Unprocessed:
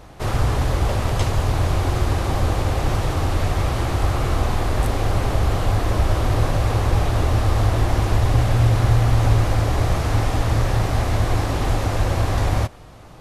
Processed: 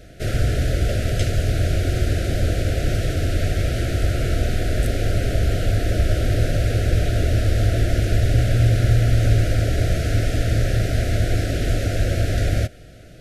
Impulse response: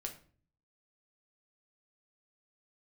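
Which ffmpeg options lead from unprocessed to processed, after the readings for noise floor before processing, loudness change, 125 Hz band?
−41 dBFS, −0.5 dB, 0.0 dB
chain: -af "asuperstop=centerf=980:order=12:qfactor=1.5"

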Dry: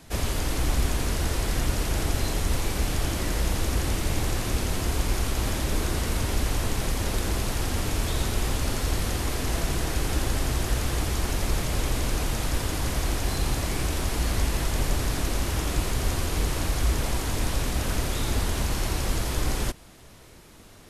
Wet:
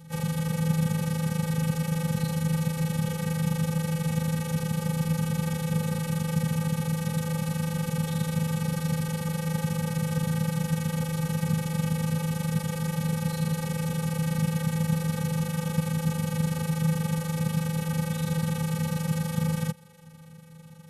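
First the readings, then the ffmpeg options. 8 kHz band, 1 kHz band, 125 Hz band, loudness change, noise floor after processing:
−6.5 dB, −4.0 dB, +3.0 dB, −0.5 dB, −46 dBFS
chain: -filter_complex "[0:a]afftfilt=real='hypot(re,im)*cos(PI*b)':imag='0':win_size=512:overlap=0.75,acrossover=split=110|1400|2700[link_01][link_02][link_03][link_04];[link_01]acompressor=mode=upward:threshold=-40dB:ratio=2.5[link_05];[link_05][link_02][link_03][link_04]amix=inputs=4:normalize=0,aeval=exprs='val(0)*sin(2*PI*160*n/s)':channel_layout=same,equalizer=frequency=5000:width_type=o:width=1.4:gain=-5.5,volume=2.5dB"

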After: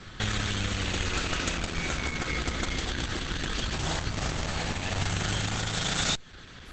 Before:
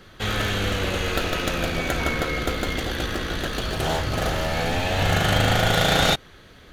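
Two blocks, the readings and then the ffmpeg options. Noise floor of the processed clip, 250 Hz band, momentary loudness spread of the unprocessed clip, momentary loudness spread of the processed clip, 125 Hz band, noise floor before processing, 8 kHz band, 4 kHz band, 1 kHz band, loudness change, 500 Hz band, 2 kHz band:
−47 dBFS, −7.0 dB, 8 LU, 3 LU, −6.5 dB, −48 dBFS, −1.0 dB, −5.5 dB, −9.5 dB, −6.5 dB, −12.5 dB, −7.0 dB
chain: -filter_complex "[0:a]equalizer=frequency=540:width_type=o:width=1.3:gain=-8,acrossover=split=6500[link_01][link_02];[link_01]acompressor=threshold=-31dB:ratio=6[link_03];[link_03][link_02]amix=inputs=2:normalize=0,aeval=exprs='0.168*(cos(1*acos(clip(val(0)/0.168,-1,1)))-cos(1*PI/2))+0.0266*(cos(4*acos(clip(val(0)/0.168,-1,1)))-cos(4*PI/2))':channel_layout=same,acrusher=bits=3:mode=log:mix=0:aa=0.000001,volume=5dB" -ar 48000 -c:a libopus -b:a 12k

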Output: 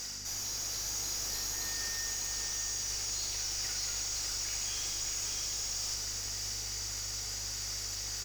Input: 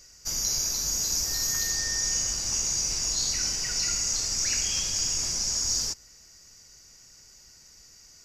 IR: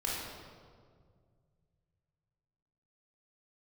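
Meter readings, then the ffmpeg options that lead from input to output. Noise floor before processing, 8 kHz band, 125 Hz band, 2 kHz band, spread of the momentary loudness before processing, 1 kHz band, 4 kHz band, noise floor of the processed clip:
−54 dBFS, −7.5 dB, −5.0 dB, −5.0 dB, 1 LU, −3.0 dB, −6.5 dB, −39 dBFS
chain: -filter_complex "[0:a]highshelf=frequency=6300:gain=7.5,areverse,acompressor=threshold=-37dB:ratio=6,areverse,aeval=exprs='val(0)+0.00282*(sin(2*PI*50*n/s)+sin(2*PI*2*50*n/s)/2+sin(2*PI*3*50*n/s)/3+sin(2*PI*4*50*n/s)/4+sin(2*PI*5*50*n/s)/5)':channel_layout=same,asplit=2[link_01][link_02];[link_02]highpass=frequency=720:poles=1,volume=29dB,asoftclip=type=tanh:threshold=-27.5dB[link_03];[link_01][link_03]amix=inputs=2:normalize=0,lowpass=frequency=6200:poles=1,volume=-6dB,aecho=1:1:598:0.562,asplit=2[link_04][link_05];[1:a]atrim=start_sample=2205[link_06];[link_05][link_06]afir=irnorm=-1:irlink=0,volume=-5.5dB[link_07];[link_04][link_07]amix=inputs=2:normalize=0,volume=-6dB"

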